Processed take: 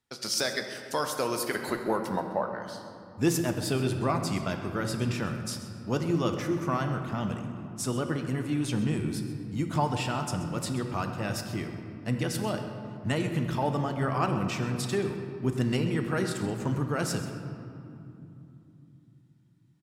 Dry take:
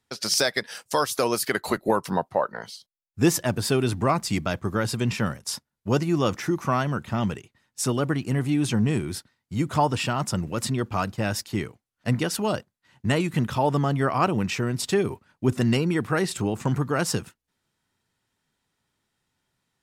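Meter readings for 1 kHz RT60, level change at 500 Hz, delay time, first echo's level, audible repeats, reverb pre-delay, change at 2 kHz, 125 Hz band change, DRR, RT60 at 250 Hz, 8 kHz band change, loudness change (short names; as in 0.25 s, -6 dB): 2.8 s, -5.0 dB, 0.131 s, -14.5 dB, 1, 3 ms, -5.5 dB, -4.0 dB, 5.0 dB, 4.8 s, -6.0 dB, -5.0 dB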